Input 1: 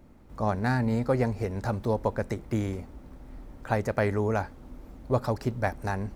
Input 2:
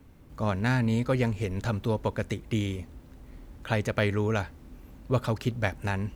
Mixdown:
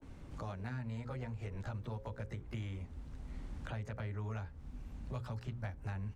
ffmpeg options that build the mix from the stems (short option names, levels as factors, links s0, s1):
-filter_complex "[0:a]volume=0.178,asplit=2[s0][s1];[1:a]lowpass=f=9200:w=0.5412,lowpass=f=9200:w=1.3066,asubboost=boost=6:cutoff=150,adelay=16,volume=1.26[s2];[s1]apad=whole_len=272328[s3];[s2][s3]sidechaincompress=threshold=0.00316:ratio=3:attack=9.3:release=1120[s4];[s0][s4]amix=inputs=2:normalize=0,bandreject=f=60:t=h:w=6,bandreject=f=120:t=h:w=6,bandreject=f=180:t=h:w=6,bandreject=f=240:t=h:w=6,bandreject=f=300:t=h:w=6,bandreject=f=360:t=h:w=6,bandreject=f=420:t=h:w=6,bandreject=f=480:t=h:w=6,bandreject=f=540:t=h:w=6,acrossover=split=140|700|2100[s5][s6][s7][s8];[s5]acompressor=threshold=0.00562:ratio=4[s9];[s6]acompressor=threshold=0.00447:ratio=4[s10];[s7]acompressor=threshold=0.00316:ratio=4[s11];[s8]acompressor=threshold=0.001:ratio=4[s12];[s9][s10][s11][s12]amix=inputs=4:normalize=0,adynamicequalizer=threshold=0.00112:dfrequency=2000:dqfactor=0.7:tfrequency=2000:tqfactor=0.7:attack=5:release=100:ratio=0.375:range=2:mode=cutabove:tftype=highshelf"